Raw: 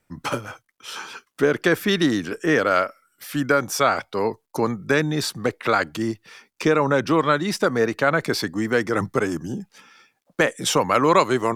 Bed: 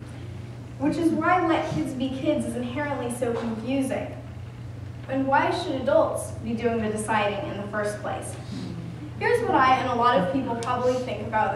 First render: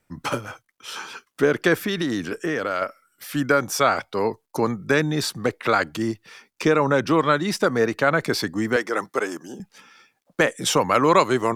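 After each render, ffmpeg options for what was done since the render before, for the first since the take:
ffmpeg -i in.wav -filter_complex "[0:a]asettb=1/sr,asplit=3[link_01][link_02][link_03];[link_01]atrim=end=1.854[link_04];[link_02]atrim=start=1.85:end=2.82,asetpts=PTS-STARTPTS,afade=type=in:duration=0.004:curve=qsin,afade=type=out:start_time=0.966:duration=0.004:curve=qsin,acompressor=threshold=-20dB:ratio=6:attack=3.2:release=140:knee=1:detection=peak[link_05];[link_03]atrim=start=2.816[link_06];[link_04][link_05]acrossfade=duration=0.004:curve1=hsin:curve2=qsin[link_07];[link_07][link_06]acrossfade=duration=0.004:curve1=qsin:curve2=hsin,asettb=1/sr,asplit=3[link_08][link_09][link_10];[link_08]atrim=end=8.764[link_11];[link_09]atrim=start=8.76:end=9.6,asetpts=PTS-STARTPTS,afade=type=in:duration=0.004:curve=qsin,afade=type=out:start_time=0.836:duration=0.004:curve=qsin,highpass=400[link_12];[link_10]atrim=start=9.596[link_13];[link_11][link_12]acrossfade=duration=0.004:curve1=hsin:curve2=qsin[link_14];[link_14][link_13]acrossfade=duration=0.004:curve1=qsin:curve2=hsin" out.wav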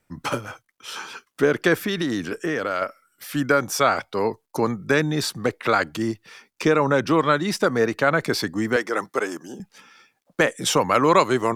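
ffmpeg -i in.wav -af anull out.wav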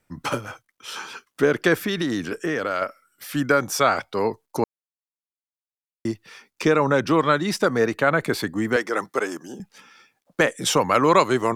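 ffmpeg -i in.wav -filter_complex "[0:a]asettb=1/sr,asplit=3[link_01][link_02][link_03];[link_01]atrim=end=7.974[link_04];[link_02]atrim=start=7.97:end=8.71,asetpts=PTS-STARTPTS,afade=type=in:duration=0.004:curve=qsin,afade=type=out:start_time=0.736:duration=0.004:curve=qsin,equalizer=frequency=5300:width=2.9:gain=-9.5[link_05];[link_03]atrim=start=8.706[link_06];[link_04][link_05]acrossfade=duration=0.004:curve1=hsin:curve2=qsin[link_07];[link_07][link_06]acrossfade=duration=0.004:curve1=qsin:curve2=hsin,asplit=3[link_08][link_09][link_10];[link_08]atrim=end=4.64,asetpts=PTS-STARTPTS,afade=type=out:start_time=4.636:duration=0.004:curve=hsin[link_11];[link_09]atrim=start=4.64:end=6.05,asetpts=PTS-STARTPTS,volume=0[link_12];[link_10]atrim=start=6.05,asetpts=PTS-STARTPTS,afade=type=in:duration=0.004:curve=hsin[link_13];[link_11][link_12][link_13]concat=n=3:v=0:a=1" out.wav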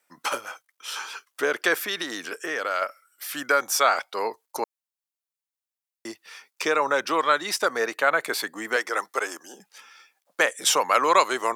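ffmpeg -i in.wav -af "highpass=600,highshelf=frequency=6300:gain=5" out.wav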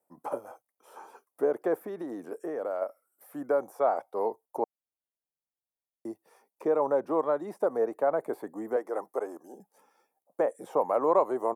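ffmpeg -i in.wav -filter_complex "[0:a]acrossover=split=2700[link_01][link_02];[link_02]acompressor=threshold=-44dB:ratio=4:attack=1:release=60[link_03];[link_01][link_03]amix=inputs=2:normalize=0,firequalizer=gain_entry='entry(750,0);entry(1400,-20);entry(2900,-29);entry(4800,-25);entry(10000,-8)':delay=0.05:min_phase=1" out.wav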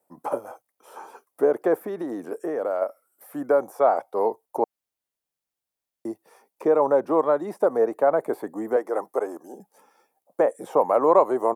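ffmpeg -i in.wav -af "volume=6.5dB" out.wav

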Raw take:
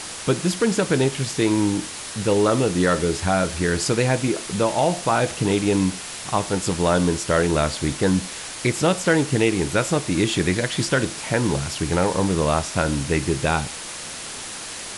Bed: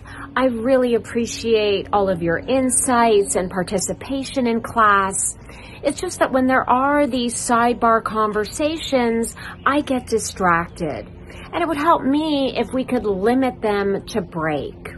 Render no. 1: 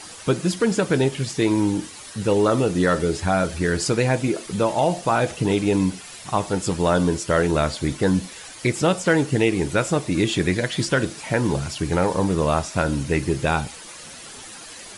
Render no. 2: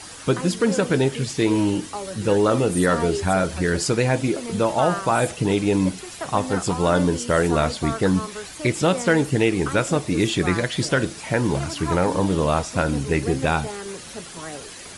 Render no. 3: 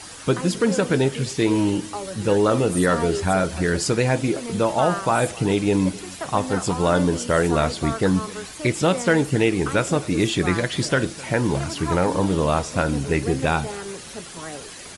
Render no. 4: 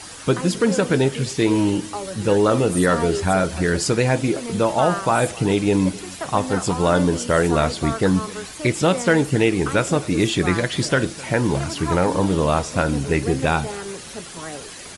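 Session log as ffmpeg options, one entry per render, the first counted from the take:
ffmpeg -i in.wav -af "afftdn=noise_reduction=10:noise_floor=-34" out.wav
ffmpeg -i in.wav -i bed.wav -filter_complex "[1:a]volume=-14.5dB[link_01];[0:a][link_01]amix=inputs=2:normalize=0" out.wav
ffmpeg -i in.wav -af "aecho=1:1:259:0.0794" out.wav
ffmpeg -i in.wav -af "volume=1.5dB" out.wav

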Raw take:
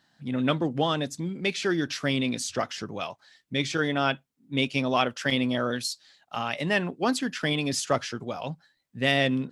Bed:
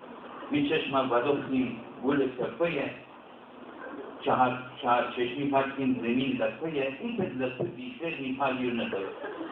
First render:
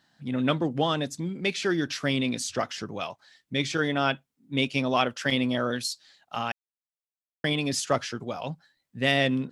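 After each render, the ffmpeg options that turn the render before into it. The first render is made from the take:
ffmpeg -i in.wav -filter_complex "[0:a]asplit=3[link_01][link_02][link_03];[link_01]atrim=end=6.52,asetpts=PTS-STARTPTS,afade=type=out:start_time=6.516:duration=0.004:curve=hsin[link_04];[link_02]atrim=start=6.52:end=7.44,asetpts=PTS-STARTPTS,volume=0[link_05];[link_03]atrim=start=7.44,asetpts=PTS-STARTPTS,afade=type=in:duration=0.004:curve=hsin[link_06];[link_04][link_05][link_06]concat=n=3:v=0:a=1" out.wav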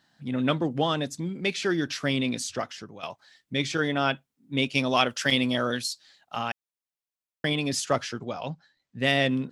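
ffmpeg -i in.wav -filter_complex "[0:a]asettb=1/sr,asplit=3[link_01][link_02][link_03];[link_01]atrim=end=4.754[link_04];[link_02]atrim=start=4.75:end=5.81,asetpts=PTS-STARTPTS,afade=type=in:duration=0.004:curve=qsin,afade=type=out:start_time=1.056:duration=0.004:curve=qsin,highshelf=frequency=2900:gain=8[link_05];[link_03]atrim=start=5.806[link_06];[link_04][link_05]acrossfade=duration=0.004:curve1=hsin:curve2=qsin[link_07];[link_07][link_06]acrossfade=duration=0.004:curve1=qsin:curve2=hsin,asettb=1/sr,asplit=3[link_08][link_09][link_10];[link_08]atrim=end=8.194[link_11];[link_09]atrim=start=8.19:end=9,asetpts=PTS-STARTPTS,afade=type=in:duration=0.004:curve=qsin,afade=type=out:start_time=0.806:duration=0.004:curve=qsin,lowpass=frequency=7100:width=0.5412,lowpass=frequency=7100:width=1.3066[link_12];[link_10]atrim=start=8.996[link_13];[link_11][link_12]acrossfade=duration=0.004:curve1=hsin:curve2=qsin[link_14];[link_14][link_13]acrossfade=duration=0.004:curve1=qsin:curve2=hsin,asplit=2[link_15][link_16];[link_15]atrim=end=3.03,asetpts=PTS-STARTPTS,afade=type=out:start_time=2.37:duration=0.66:silence=0.266073[link_17];[link_16]atrim=start=3.03,asetpts=PTS-STARTPTS,afade=type=in:duration=0.004:curve=hsin:silence=0.266073[link_18];[link_17][link_18]concat=n=2:v=0:a=1" out.wav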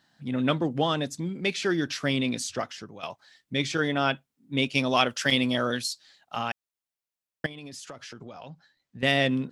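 ffmpeg -i in.wav -filter_complex "[0:a]asettb=1/sr,asplit=3[link_01][link_02][link_03];[link_01]atrim=end=7.464[link_04];[link_02]atrim=start=7.46:end=9.03,asetpts=PTS-STARTPTS,afade=type=in:duration=0.004:curve=qsin,afade=type=out:start_time=1.566:duration=0.004:curve=qsin,acompressor=threshold=-38dB:ratio=10:attack=3.2:release=140:knee=1:detection=peak[link_05];[link_03]atrim=start=9.026[link_06];[link_04][link_05]acrossfade=duration=0.004:curve1=hsin:curve2=qsin[link_07];[link_07][link_06]acrossfade=duration=0.004:curve1=qsin:curve2=hsin" out.wav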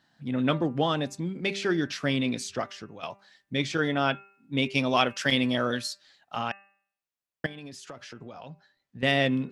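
ffmpeg -i in.wav -af "highshelf=frequency=4900:gain=-6,bandreject=frequency=197.7:width_type=h:width=4,bandreject=frequency=395.4:width_type=h:width=4,bandreject=frequency=593.1:width_type=h:width=4,bandreject=frequency=790.8:width_type=h:width=4,bandreject=frequency=988.5:width_type=h:width=4,bandreject=frequency=1186.2:width_type=h:width=4,bandreject=frequency=1383.9:width_type=h:width=4,bandreject=frequency=1581.6:width_type=h:width=4,bandreject=frequency=1779.3:width_type=h:width=4,bandreject=frequency=1977:width_type=h:width=4,bandreject=frequency=2174.7:width_type=h:width=4,bandreject=frequency=2372.4:width_type=h:width=4,bandreject=frequency=2570.1:width_type=h:width=4,bandreject=frequency=2767.8:width_type=h:width=4" out.wav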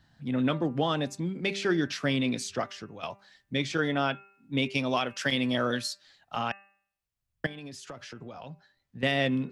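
ffmpeg -i in.wav -filter_complex "[0:a]acrossover=split=110[link_01][link_02];[link_01]acompressor=mode=upward:threshold=-51dB:ratio=2.5[link_03];[link_03][link_02]amix=inputs=2:normalize=0,alimiter=limit=-15dB:level=0:latency=1:release=289" out.wav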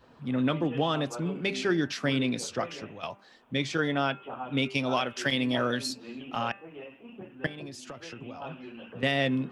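ffmpeg -i in.wav -i bed.wav -filter_complex "[1:a]volume=-14dB[link_01];[0:a][link_01]amix=inputs=2:normalize=0" out.wav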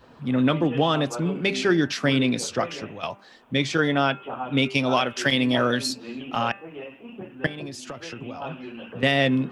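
ffmpeg -i in.wav -af "volume=6dB" out.wav

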